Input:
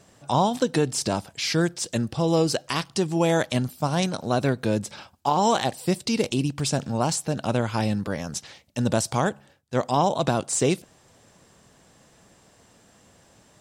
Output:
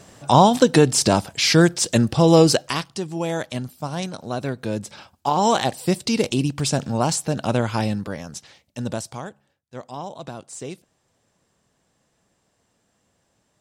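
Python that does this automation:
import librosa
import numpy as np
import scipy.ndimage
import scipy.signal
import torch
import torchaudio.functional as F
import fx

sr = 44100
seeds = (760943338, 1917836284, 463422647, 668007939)

y = fx.gain(x, sr, db=fx.line((2.5, 8.0), (2.98, -4.0), (4.45, -4.0), (5.55, 3.0), (7.72, 3.0), (8.34, -4.0), (8.9, -4.0), (9.3, -12.0)))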